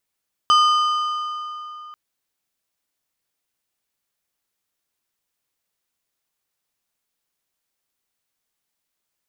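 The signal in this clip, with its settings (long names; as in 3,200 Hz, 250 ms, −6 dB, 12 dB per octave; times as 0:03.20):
struck metal plate, length 1.44 s, lowest mode 1,220 Hz, modes 6, decay 3.31 s, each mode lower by 7.5 dB, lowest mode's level −11 dB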